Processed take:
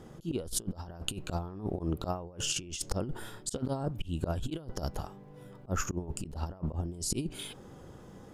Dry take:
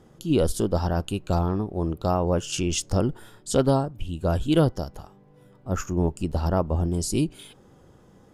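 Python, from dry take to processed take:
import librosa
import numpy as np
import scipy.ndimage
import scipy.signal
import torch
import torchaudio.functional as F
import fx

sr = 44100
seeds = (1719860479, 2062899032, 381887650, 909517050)

y = fx.auto_swell(x, sr, attack_ms=224.0)
y = fx.over_compress(y, sr, threshold_db=-32.0, ratio=-0.5)
y = F.gain(torch.from_numpy(y), -1.5).numpy()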